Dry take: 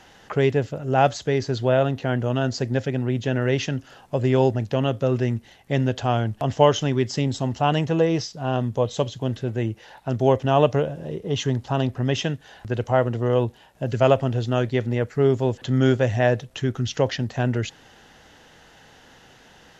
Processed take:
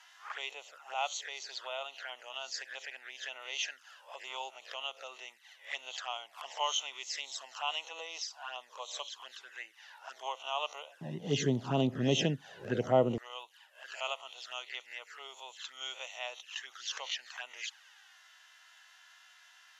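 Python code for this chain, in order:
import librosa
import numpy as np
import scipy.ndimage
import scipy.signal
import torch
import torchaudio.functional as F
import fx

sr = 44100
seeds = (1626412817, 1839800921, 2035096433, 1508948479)

y = fx.spec_swells(x, sr, rise_s=0.31)
y = fx.env_flanger(y, sr, rest_ms=3.2, full_db=-18.0)
y = fx.highpass(y, sr, hz=fx.steps((0.0, 1000.0), (11.01, 150.0), (13.18, 1100.0)), slope=24)
y = y * 10.0 ** (-4.0 / 20.0)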